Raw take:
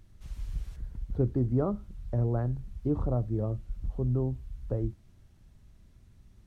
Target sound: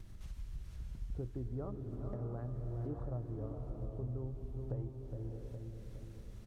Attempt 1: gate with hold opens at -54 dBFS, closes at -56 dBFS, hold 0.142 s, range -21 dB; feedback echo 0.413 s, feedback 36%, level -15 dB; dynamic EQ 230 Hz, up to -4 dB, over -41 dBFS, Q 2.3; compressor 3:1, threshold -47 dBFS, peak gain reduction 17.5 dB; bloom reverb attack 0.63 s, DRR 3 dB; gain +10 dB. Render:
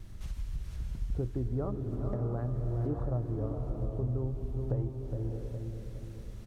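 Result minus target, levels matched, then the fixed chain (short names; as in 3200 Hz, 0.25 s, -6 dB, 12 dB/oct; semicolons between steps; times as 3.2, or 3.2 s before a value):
compressor: peak gain reduction -8 dB
gate with hold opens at -54 dBFS, closes at -56 dBFS, hold 0.142 s, range -21 dB; feedback echo 0.413 s, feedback 36%, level -15 dB; dynamic EQ 230 Hz, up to -4 dB, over -41 dBFS, Q 2.3; compressor 3:1, threshold -59 dBFS, peak gain reduction 25.5 dB; bloom reverb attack 0.63 s, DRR 3 dB; gain +10 dB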